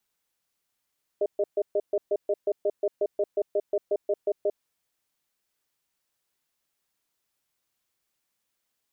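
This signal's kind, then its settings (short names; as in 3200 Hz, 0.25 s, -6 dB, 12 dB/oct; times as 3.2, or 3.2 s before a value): cadence 408 Hz, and 612 Hz, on 0.05 s, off 0.13 s, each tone -24 dBFS 3.30 s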